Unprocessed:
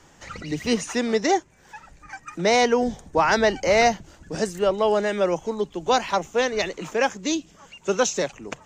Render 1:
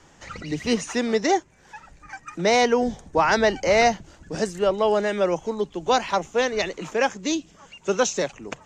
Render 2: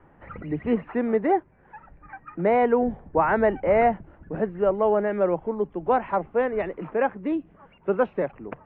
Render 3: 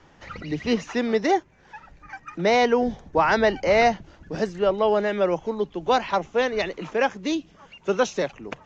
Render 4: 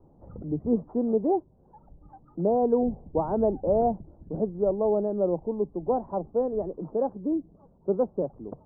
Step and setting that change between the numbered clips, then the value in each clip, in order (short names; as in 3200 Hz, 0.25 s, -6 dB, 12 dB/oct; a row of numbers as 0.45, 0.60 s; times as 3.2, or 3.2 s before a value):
Bessel low-pass, frequency: 10000, 1300, 3600, 500 Hz